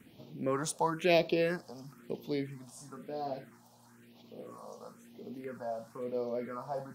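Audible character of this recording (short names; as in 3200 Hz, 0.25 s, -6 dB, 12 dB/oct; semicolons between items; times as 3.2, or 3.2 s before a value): phasing stages 4, 1 Hz, lowest notch 330–1600 Hz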